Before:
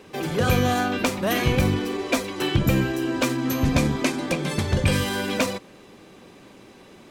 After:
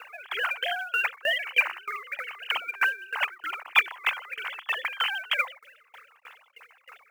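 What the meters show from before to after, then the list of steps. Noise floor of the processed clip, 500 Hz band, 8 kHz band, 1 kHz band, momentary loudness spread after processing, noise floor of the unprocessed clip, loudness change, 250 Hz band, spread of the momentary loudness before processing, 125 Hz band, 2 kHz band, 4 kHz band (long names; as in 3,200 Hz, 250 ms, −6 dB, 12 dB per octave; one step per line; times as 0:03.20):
−62 dBFS, −15.0 dB, below −15 dB, −4.5 dB, 11 LU, −49 dBFS, −4.0 dB, below −40 dB, 5 LU, below −40 dB, +3.5 dB, −1.0 dB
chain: three sine waves on the formant tracks
high-pass filter 1,000 Hz 24 dB per octave
in parallel at −0.5 dB: downward compressor 4 to 1, threshold −42 dBFS, peak gain reduction 20.5 dB
on the sum: log-companded quantiser 6 bits
tremolo with a ramp in dB decaying 3.2 Hz, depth 24 dB
level +5.5 dB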